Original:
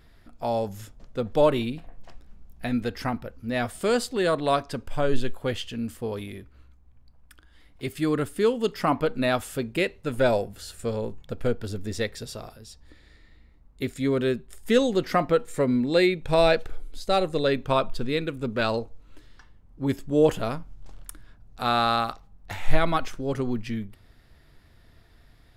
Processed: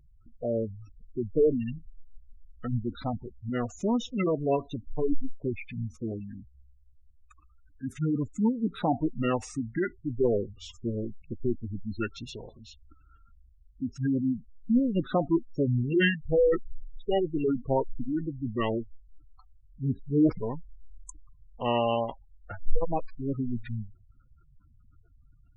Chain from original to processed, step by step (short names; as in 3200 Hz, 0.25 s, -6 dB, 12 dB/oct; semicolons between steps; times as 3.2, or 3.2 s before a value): formant shift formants -5 st; spectral gate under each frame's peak -15 dB strong; gain -2.5 dB